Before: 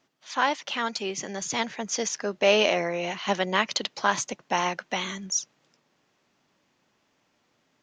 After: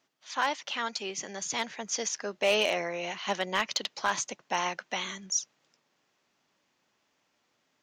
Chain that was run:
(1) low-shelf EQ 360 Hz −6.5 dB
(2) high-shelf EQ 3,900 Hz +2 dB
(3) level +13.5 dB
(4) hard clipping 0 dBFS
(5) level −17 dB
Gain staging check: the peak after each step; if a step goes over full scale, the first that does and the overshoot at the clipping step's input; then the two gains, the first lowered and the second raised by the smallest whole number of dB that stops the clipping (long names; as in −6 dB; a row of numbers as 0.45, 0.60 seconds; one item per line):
−7.5, −7.0, +6.5, 0.0, −17.0 dBFS
step 3, 6.5 dB
step 3 +6.5 dB, step 5 −10 dB